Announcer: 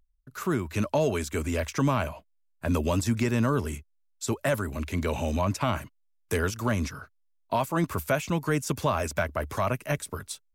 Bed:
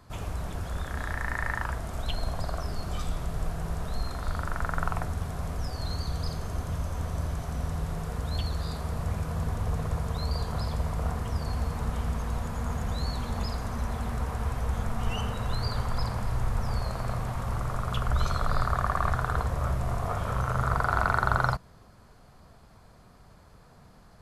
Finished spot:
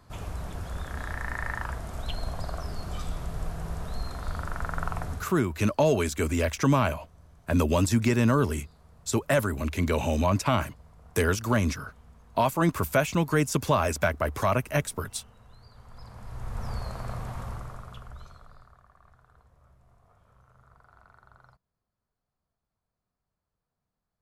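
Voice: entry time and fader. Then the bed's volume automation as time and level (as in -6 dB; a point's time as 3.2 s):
4.85 s, +2.5 dB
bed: 5.14 s -2 dB
5.44 s -23.5 dB
15.71 s -23.5 dB
16.65 s -4 dB
17.42 s -4 dB
18.85 s -32 dB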